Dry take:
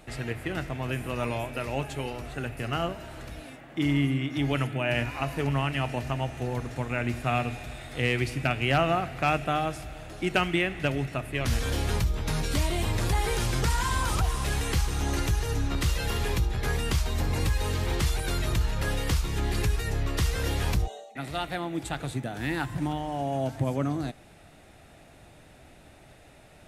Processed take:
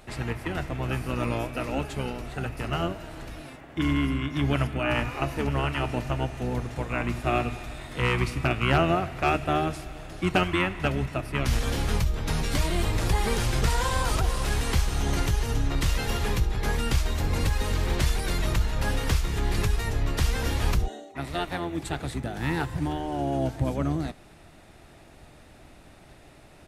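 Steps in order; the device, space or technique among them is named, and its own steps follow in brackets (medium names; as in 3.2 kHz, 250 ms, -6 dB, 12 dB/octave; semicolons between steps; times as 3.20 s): octave pedal (harmony voices -12 st -3 dB)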